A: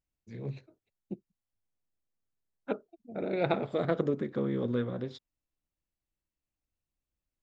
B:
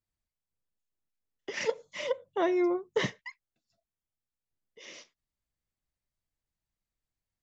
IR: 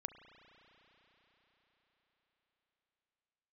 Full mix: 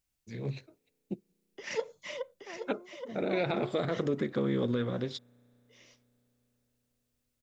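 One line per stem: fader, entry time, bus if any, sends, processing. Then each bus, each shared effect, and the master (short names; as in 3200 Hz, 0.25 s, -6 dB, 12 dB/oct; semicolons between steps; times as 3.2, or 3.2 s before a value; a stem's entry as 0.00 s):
+1.5 dB, 0.00 s, send -23 dB, no echo send, high shelf 2200 Hz +9.5 dB
-0.5 dB, 0.10 s, no send, echo send -11.5 dB, auto duck -24 dB, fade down 0.65 s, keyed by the first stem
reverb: on, RT60 5.0 s, pre-delay 33 ms
echo: echo 0.824 s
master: limiter -20 dBFS, peak gain reduction 10 dB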